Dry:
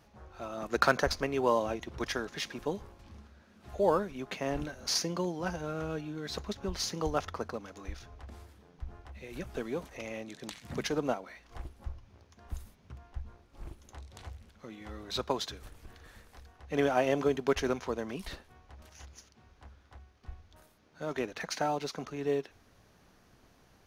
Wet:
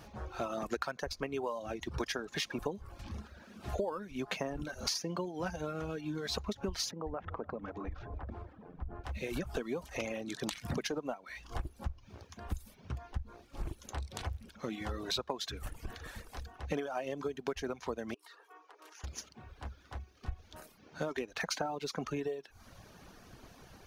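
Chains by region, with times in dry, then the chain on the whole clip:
6.91–9.04 s: low-pass 1.4 kHz + compression 4:1, threshold -45 dBFS + two-band feedback delay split 640 Hz, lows 280 ms, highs 155 ms, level -13.5 dB
18.14–19.04 s: rippled Chebyshev high-pass 300 Hz, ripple 9 dB + comb 4.3 ms, depth 34% + compression 16:1, threshold -58 dBFS
whole clip: band-stop 2 kHz, Q 24; compression 20:1, threshold -41 dBFS; reverb removal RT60 0.81 s; trim +9.5 dB

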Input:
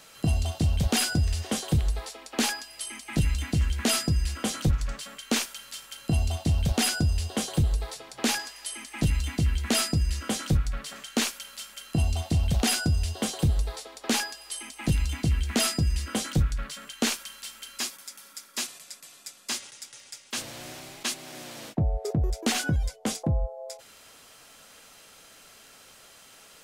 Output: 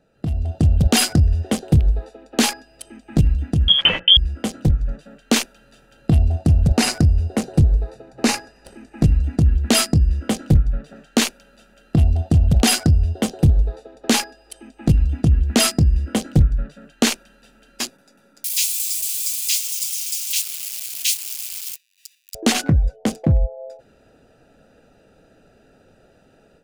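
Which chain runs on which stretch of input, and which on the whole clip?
3.68–4.17 s: frequency inversion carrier 3.3 kHz + treble shelf 2.6 kHz +9 dB
6.30–9.47 s: CVSD coder 64 kbps + band-stop 3.3 kHz, Q 5.4
18.44–22.35 s: zero-crossing glitches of -24 dBFS + steep high-pass 2.2 kHz 48 dB/octave
whole clip: local Wiener filter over 41 samples; level rider gain up to 10 dB

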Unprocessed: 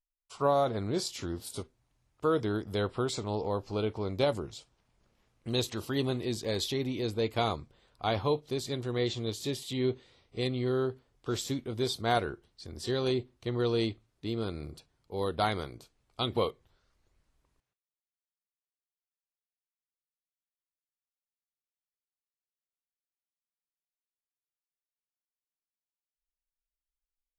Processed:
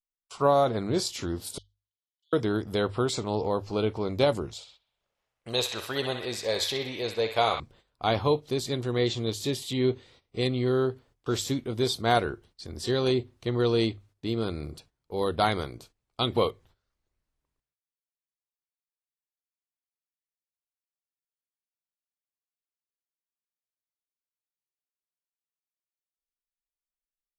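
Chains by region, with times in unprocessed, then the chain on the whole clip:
1.58–2.33 s: brick-wall FIR high-pass 2.9 kHz + distance through air 190 m
4.53–7.60 s: resonant low shelf 400 Hz -8.5 dB, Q 1.5 + band-passed feedback delay 63 ms, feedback 75%, band-pass 2.1 kHz, level -5 dB
whole clip: gate -59 dBFS, range -14 dB; hum notches 50/100 Hz; trim +4.5 dB

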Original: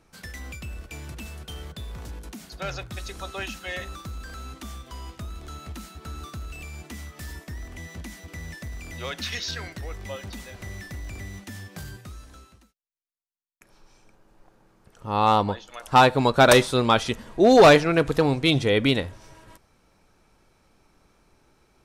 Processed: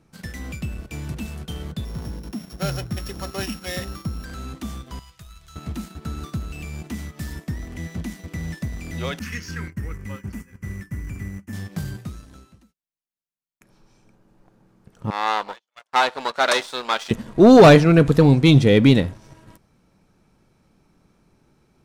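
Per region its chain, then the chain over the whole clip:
1.85–4.25 s: sorted samples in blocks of 8 samples + peaking EQ 4.4 kHz -3.5 dB 0.2 oct
4.99–5.56 s: amplifier tone stack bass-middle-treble 10-0-10 + comb 6.1 ms, depth 33%
9.19–11.53 s: expander -36 dBFS + static phaser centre 1.6 kHz, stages 4 + de-hum 85.7 Hz, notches 12
15.10–17.11 s: partial rectifier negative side -12 dB + band-pass 790–7800 Hz + gate -46 dBFS, range -28 dB
whole clip: peaking EQ 170 Hz +11 dB 1.9 oct; waveshaping leveller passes 1; trim -1.5 dB

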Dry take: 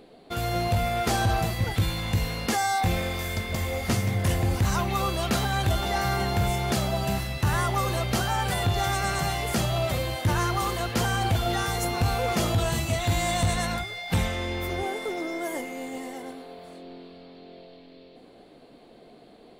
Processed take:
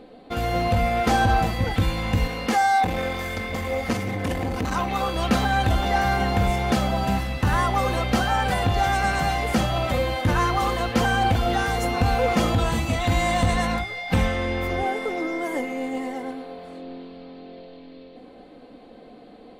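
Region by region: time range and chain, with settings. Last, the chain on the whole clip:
2.27–5.16 s: bass shelf 160 Hz -6 dB + transformer saturation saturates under 410 Hz
whole clip: treble shelf 4.7 kHz -12 dB; comb 3.9 ms, depth 47%; trim +4.5 dB

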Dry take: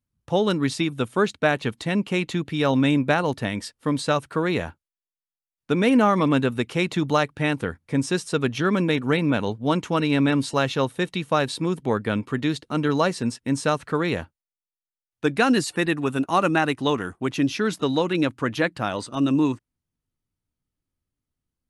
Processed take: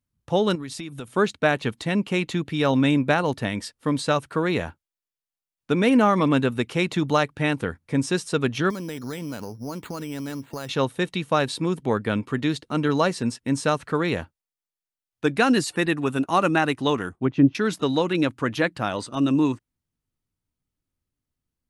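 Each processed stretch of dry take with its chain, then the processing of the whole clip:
0.55–1.08 s: treble shelf 8.8 kHz +9 dB + compression, threshold -31 dBFS
8.70–10.69 s: compression, threshold -29 dBFS + careless resampling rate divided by 8×, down filtered, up hold
17.09–17.55 s: low-pass that closes with the level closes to 940 Hz, closed at -18 dBFS + bass shelf 380 Hz +9 dB + upward expansion, over -32 dBFS
whole clip: none

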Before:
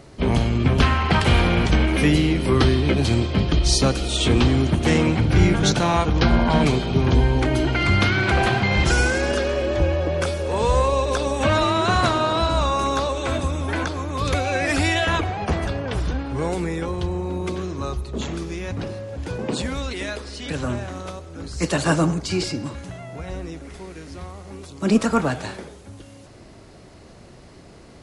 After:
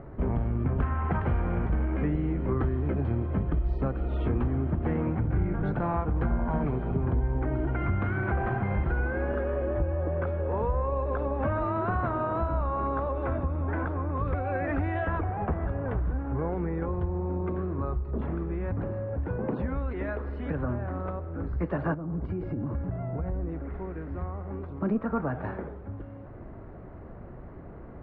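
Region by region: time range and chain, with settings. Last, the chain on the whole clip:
21.94–23.49 s: compression 20:1, threshold -29 dBFS + tilt shelf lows +4.5 dB, about 760 Hz
whole clip: low-pass 1.6 kHz 24 dB/octave; bass shelf 72 Hz +8.5 dB; compression 3:1, threshold -28 dBFS

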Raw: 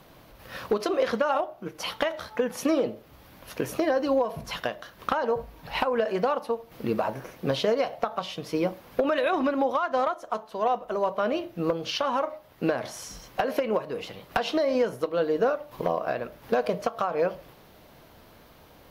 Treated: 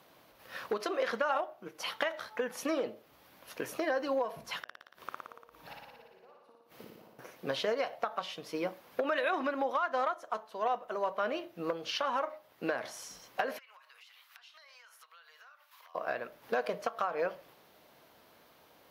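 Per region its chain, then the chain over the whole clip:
4.63–7.19 s: inverted gate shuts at -28 dBFS, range -29 dB + flutter echo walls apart 9.9 m, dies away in 1.3 s
13.58–15.95 s: high-pass 1.2 kHz 24 dB/octave + compression 10:1, threshold -47 dBFS
whole clip: high-pass 400 Hz 6 dB/octave; dynamic bell 1.7 kHz, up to +5 dB, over -43 dBFS, Q 1.5; trim -6 dB

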